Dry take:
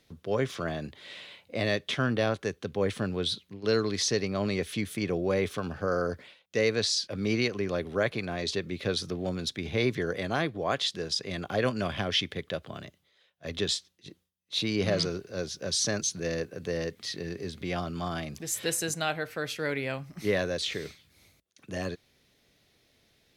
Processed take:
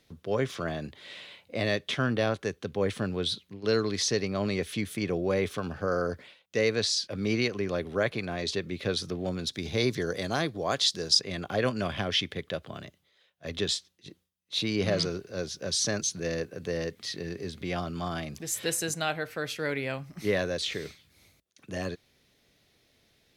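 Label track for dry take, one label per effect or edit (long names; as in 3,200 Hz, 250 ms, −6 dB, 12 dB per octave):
9.530000	11.210000	high shelf with overshoot 3,600 Hz +6.5 dB, Q 1.5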